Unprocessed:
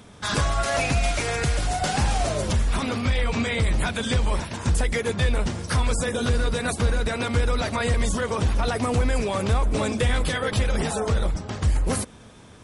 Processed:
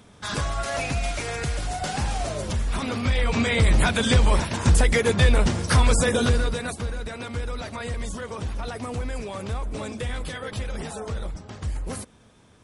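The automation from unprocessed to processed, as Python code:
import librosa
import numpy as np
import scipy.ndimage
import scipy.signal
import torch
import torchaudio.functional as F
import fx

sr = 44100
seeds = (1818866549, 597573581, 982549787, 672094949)

y = fx.gain(x, sr, db=fx.line((2.54, -4.0), (3.75, 4.5), (6.16, 4.5), (6.87, -8.0)))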